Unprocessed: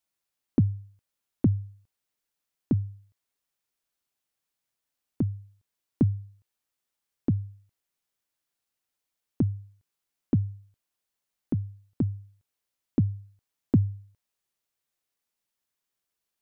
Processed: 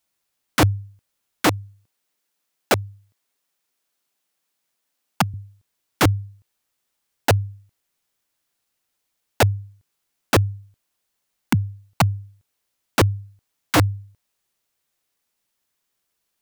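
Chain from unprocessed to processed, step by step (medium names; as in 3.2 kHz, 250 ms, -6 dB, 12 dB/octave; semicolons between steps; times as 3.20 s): integer overflow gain 18.5 dB; 1.46–5.34 s: high-pass 160 Hz 12 dB/octave; trim +8.5 dB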